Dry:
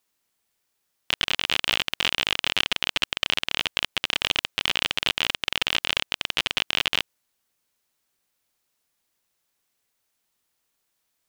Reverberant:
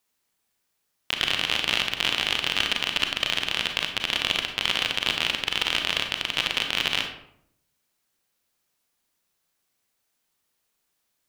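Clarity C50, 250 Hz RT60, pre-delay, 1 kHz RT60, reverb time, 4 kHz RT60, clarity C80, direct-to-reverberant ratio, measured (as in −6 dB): 7.0 dB, 0.95 s, 32 ms, 0.65 s, 0.70 s, 0.45 s, 9.5 dB, 4.0 dB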